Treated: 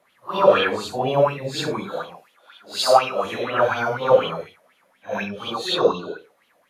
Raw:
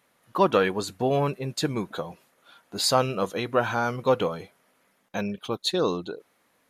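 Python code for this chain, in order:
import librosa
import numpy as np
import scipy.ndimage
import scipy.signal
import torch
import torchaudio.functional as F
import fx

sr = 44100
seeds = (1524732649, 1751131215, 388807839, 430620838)

y = fx.phase_scramble(x, sr, seeds[0], window_ms=200)
y = fx.highpass(y, sr, hz=fx.line((1.93, 220.0), (3.24, 640.0)), slope=6, at=(1.93, 3.24), fade=0.02)
y = fx.bell_lfo(y, sr, hz=4.1, low_hz=540.0, high_hz=3300.0, db=17)
y = F.gain(torch.from_numpy(y), -1.5).numpy()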